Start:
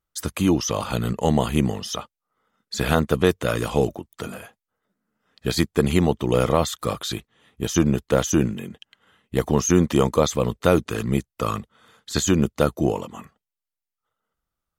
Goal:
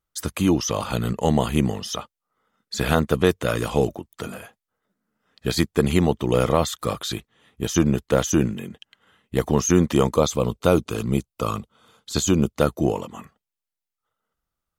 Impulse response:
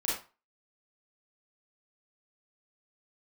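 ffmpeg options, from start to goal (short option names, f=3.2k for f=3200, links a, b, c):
-filter_complex "[0:a]asettb=1/sr,asplit=3[a][b][c];[a]atrim=end=10.164[d];[b]atrim=start=10.16:end=12.55,asetpts=PTS-STARTPTS,afade=t=in:d=0.004:c=qsin,afade=t=out:st=2.386:d=0.004:c=qsin,equalizer=f=1.8k:w=4.1:g=-11.5[e];[c]atrim=start=12.546[f];[d][e]acrossfade=d=0.004:c1=hsin:c2=qsin[g];[g][f]acrossfade=d=0.004:c1=qsin:c2=hsin"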